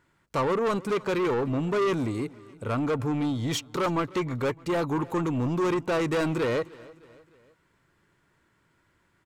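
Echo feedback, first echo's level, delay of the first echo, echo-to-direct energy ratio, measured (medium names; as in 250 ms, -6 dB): 49%, -21.5 dB, 305 ms, -20.5 dB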